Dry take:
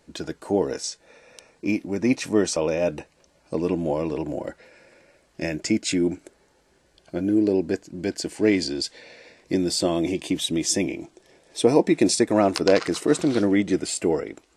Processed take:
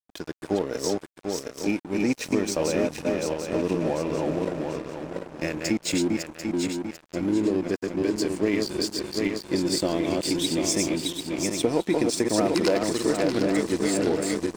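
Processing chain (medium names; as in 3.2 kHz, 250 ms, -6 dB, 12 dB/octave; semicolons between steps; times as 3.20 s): backward echo that repeats 371 ms, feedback 65%, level -3 dB; 12.38–12.78 s: waveshaping leveller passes 1; compression 6:1, threshold -18 dBFS, peak gain reduction 8 dB; crossover distortion -36.5 dBFS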